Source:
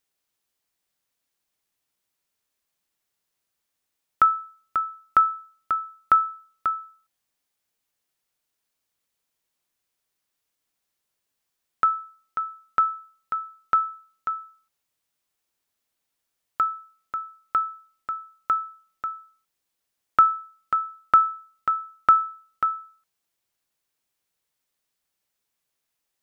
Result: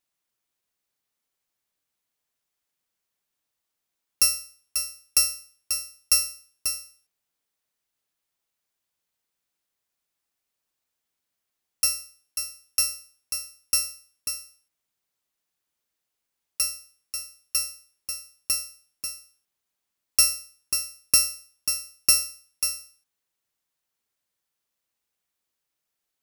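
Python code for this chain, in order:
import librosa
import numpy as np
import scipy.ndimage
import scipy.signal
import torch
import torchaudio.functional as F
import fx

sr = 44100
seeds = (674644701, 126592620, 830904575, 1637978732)

y = fx.bit_reversed(x, sr, seeds[0], block=64)
y = y * librosa.db_to_amplitude(-2.5)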